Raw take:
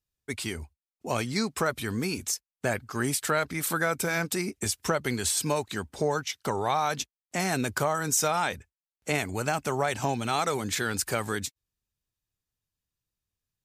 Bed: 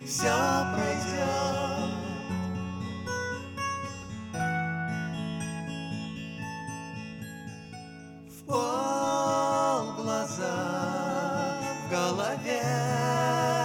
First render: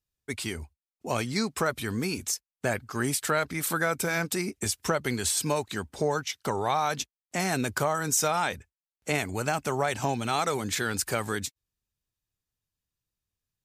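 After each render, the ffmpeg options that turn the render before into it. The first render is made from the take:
-af anull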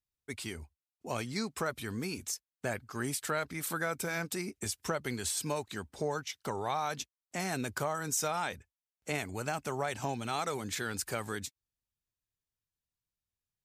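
-af "volume=-7dB"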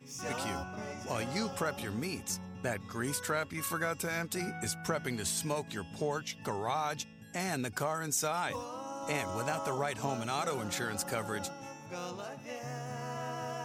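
-filter_complex "[1:a]volume=-13dB[a];[0:a][a]amix=inputs=2:normalize=0"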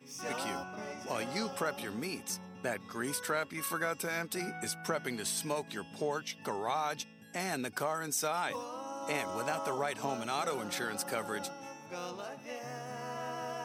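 -af "highpass=200,bandreject=f=7k:w=6.5"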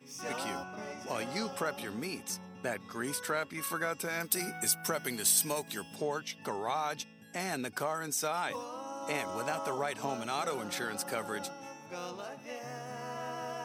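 -filter_complex "[0:a]asettb=1/sr,asplit=3[a][b][c];[a]atrim=end=4.204[d];[b]atrim=start=4.2:end=5.96,asetpts=PTS-STARTPTS,afade=t=in:d=0.004:c=qsin,afade=t=out:st=1.756:d=0.004:c=qsin,aemphasis=mode=production:type=50fm[e];[c]atrim=start=5.956[f];[d][e]acrossfade=d=0.004:c1=hsin:c2=qsin[g];[g][f]acrossfade=d=0.004:c1=qsin:c2=hsin"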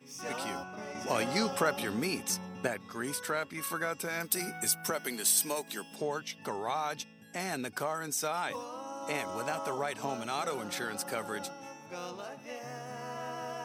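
-filter_complex "[0:a]asettb=1/sr,asplit=3[a][b][c];[a]atrim=end=4.904[d];[b]atrim=start=4.9:end=6.01,asetpts=PTS-STARTPTS,afade=t=in:d=0.004:c=qsin,afade=t=out:st=1.106:d=0.004:c=qsin,highpass=f=190:w=0.5412,highpass=f=190:w=1.3066[e];[c]atrim=start=6.006[f];[d][e]acrossfade=d=0.004:c1=hsin:c2=qsin[g];[g][f]acrossfade=d=0.004:c1=qsin:c2=hsin,asplit=3[h][i][j];[h]atrim=end=0.952[k];[i]atrim=start=0.948:end=2.672,asetpts=PTS-STARTPTS,volume=5.5dB[l];[j]atrim=start=2.668[m];[k][l]acrossfade=d=0.004:c1=hsin:c2=hsin[n];[n][m]acrossfade=d=0.004:c1=hsin:c2=hsin"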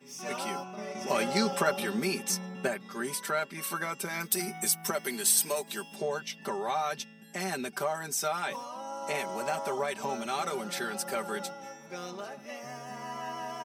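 -af "highpass=140,aecho=1:1:5.1:0.78"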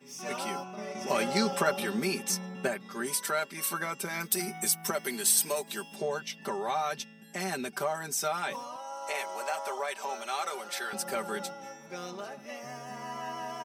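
-filter_complex "[0:a]asettb=1/sr,asplit=3[a][b][c];[a]atrim=end=3.064[d];[b]atrim=start=3.06:end=3.7,asetpts=PTS-STARTPTS,afade=t=in:d=0.004:c=qsin,afade=t=out:st=0.636:d=0.004:c=qsin,bass=f=250:g=-4,treble=f=4k:g=5[e];[c]atrim=start=3.696[f];[d][e]acrossfade=d=0.004:c1=hsin:c2=qsin[g];[g][f]acrossfade=d=0.004:c1=qsin:c2=hsin,asettb=1/sr,asplit=3[h][i][j];[h]atrim=end=8.764[k];[i]atrim=start=8.76:end=10.93,asetpts=PTS-STARTPTS,afade=t=in:d=0.004:c=qsin,afade=t=out:st=2.166:d=0.004:c=qsin,highpass=560[l];[j]atrim=start=10.926[m];[k][l]acrossfade=d=0.004:c1=hsin:c2=qsin[n];[n][m]acrossfade=d=0.004:c1=qsin:c2=hsin"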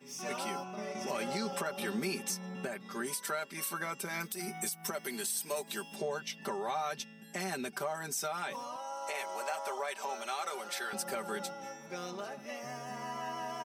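-af "acompressor=threshold=-38dB:ratio=1.5,alimiter=level_in=0.5dB:limit=-24dB:level=0:latency=1:release=134,volume=-0.5dB"

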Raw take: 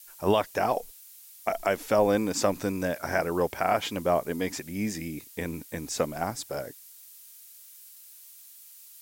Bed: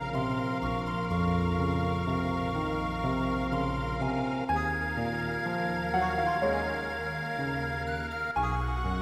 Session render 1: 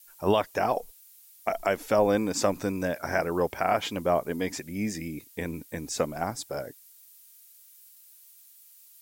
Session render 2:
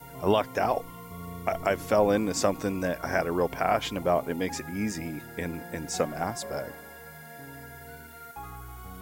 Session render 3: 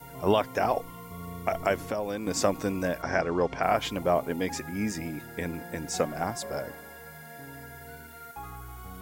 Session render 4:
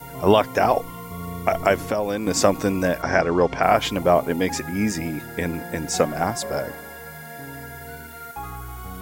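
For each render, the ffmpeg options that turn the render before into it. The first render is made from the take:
-af "afftdn=nr=6:nf=-50"
-filter_complex "[1:a]volume=-13dB[a];[0:a][a]amix=inputs=2:normalize=0"
-filter_complex "[0:a]asettb=1/sr,asplit=3[a][b][c];[a]atrim=end=1.784[d];[b]atrim=start=1.78:end=2.27,asetpts=PTS-STARTPTS,afade=t=in:d=0.004:c=qsin,afade=t=out:st=0.486:d=0.004:c=qsin,acrossover=split=1000|2500[e][f][g];[e]acompressor=threshold=-31dB:ratio=4[h];[f]acompressor=threshold=-44dB:ratio=4[i];[g]acompressor=threshold=-47dB:ratio=4[j];[h][i][j]amix=inputs=3:normalize=0[k];[c]atrim=start=2.266[l];[d][k]acrossfade=d=0.004:c1=hsin:c2=qsin[m];[m][l]acrossfade=d=0.004:c1=qsin:c2=hsin,asettb=1/sr,asplit=3[n][o][p];[n]atrim=end=3.024[q];[o]atrim=start=3.02:end=3.63,asetpts=PTS-STARTPTS,afade=t=in:d=0.004:c=qsin,afade=t=out:st=0.606:d=0.004:c=qsin,lowpass=f=6.7k:w=0.5412,lowpass=f=6.7k:w=1.3066[r];[p]atrim=start=3.626[s];[q][r]acrossfade=d=0.004:c1=hsin:c2=qsin[t];[t][s]acrossfade=d=0.004:c1=qsin:c2=hsin"
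-af "volume=7.5dB"

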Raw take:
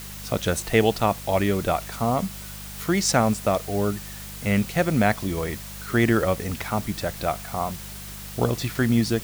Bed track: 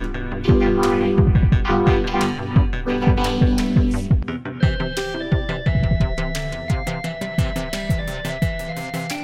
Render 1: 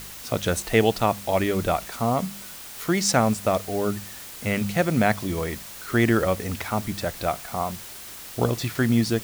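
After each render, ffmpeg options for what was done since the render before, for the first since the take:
-af "bandreject=f=50:t=h:w=4,bandreject=f=100:t=h:w=4,bandreject=f=150:t=h:w=4,bandreject=f=200:t=h:w=4"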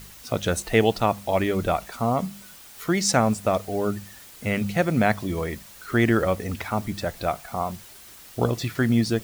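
-af "afftdn=nr=7:nf=-40"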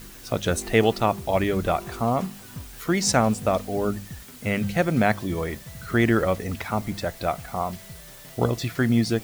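-filter_complex "[1:a]volume=-23dB[a];[0:a][a]amix=inputs=2:normalize=0"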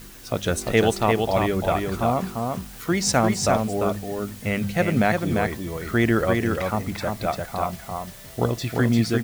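-af "aecho=1:1:347:0.631"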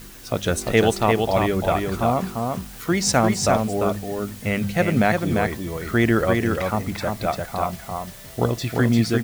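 -af "volume=1.5dB"

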